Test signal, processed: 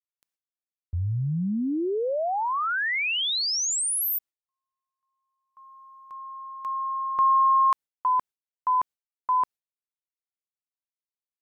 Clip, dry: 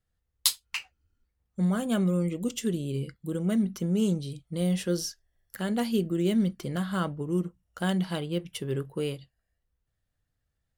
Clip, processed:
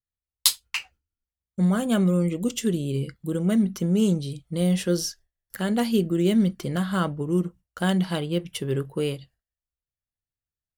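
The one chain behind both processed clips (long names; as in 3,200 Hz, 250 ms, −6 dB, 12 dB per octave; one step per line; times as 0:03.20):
noise gate with hold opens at −55 dBFS
level +4.5 dB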